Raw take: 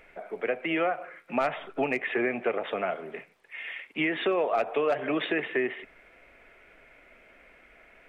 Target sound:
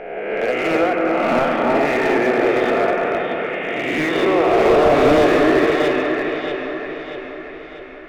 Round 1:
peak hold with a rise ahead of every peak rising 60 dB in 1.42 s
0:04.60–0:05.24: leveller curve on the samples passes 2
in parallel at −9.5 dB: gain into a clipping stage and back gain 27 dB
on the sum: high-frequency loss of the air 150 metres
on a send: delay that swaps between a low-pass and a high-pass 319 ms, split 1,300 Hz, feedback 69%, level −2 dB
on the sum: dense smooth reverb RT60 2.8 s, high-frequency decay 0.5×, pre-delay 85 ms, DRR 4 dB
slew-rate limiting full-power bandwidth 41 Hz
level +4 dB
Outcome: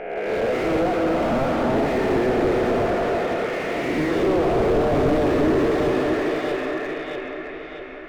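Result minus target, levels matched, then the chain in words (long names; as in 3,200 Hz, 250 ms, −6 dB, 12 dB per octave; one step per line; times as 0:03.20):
slew-rate limiting: distortion +12 dB
peak hold with a rise ahead of every peak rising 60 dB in 1.42 s
0:04.60–0:05.24: leveller curve on the samples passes 2
in parallel at −9.5 dB: gain into a clipping stage and back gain 27 dB
on the sum: high-frequency loss of the air 150 metres
on a send: delay that swaps between a low-pass and a high-pass 319 ms, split 1,300 Hz, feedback 69%, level −2 dB
on the sum: dense smooth reverb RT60 2.8 s, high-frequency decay 0.5×, pre-delay 85 ms, DRR 4 dB
slew-rate limiting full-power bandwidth 126.5 Hz
level +4 dB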